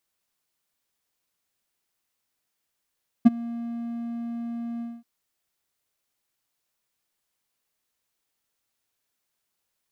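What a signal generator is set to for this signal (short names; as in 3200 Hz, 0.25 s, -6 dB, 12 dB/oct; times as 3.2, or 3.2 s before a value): ADSR triangle 234 Hz, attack 16 ms, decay 23 ms, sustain -22.5 dB, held 1.56 s, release 0.222 s -5 dBFS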